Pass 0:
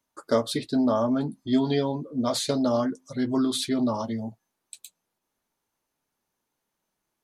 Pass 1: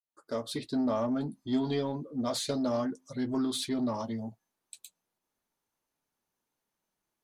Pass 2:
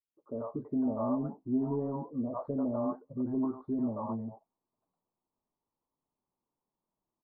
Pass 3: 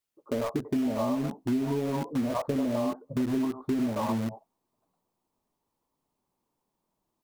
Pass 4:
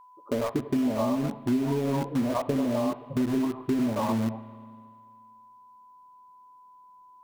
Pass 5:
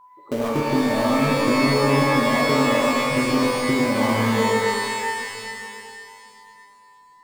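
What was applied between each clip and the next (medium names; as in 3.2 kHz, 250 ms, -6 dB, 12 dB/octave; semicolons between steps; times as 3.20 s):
fade-in on the opening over 0.68 s; in parallel at -4.5 dB: saturation -25.5 dBFS, distortion -10 dB; on the sum: trim -8.5 dB
elliptic low-pass 1.1 kHz, stop band 60 dB; bands offset in time lows, highs 90 ms, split 550 Hz
in parallel at -6.5 dB: bit crusher 6-bit; on the sum: compression, threshold -34 dBFS, peak gain reduction 11.5 dB; trim +8.5 dB
whistle 1 kHz -52 dBFS; spring tank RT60 2 s, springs 36/58 ms, chirp 55 ms, DRR 15 dB; trim +2 dB
pitch-shifted reverb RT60 2.5 s, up +12 st, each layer -2 dB, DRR -1 dB; trim +1.5 dB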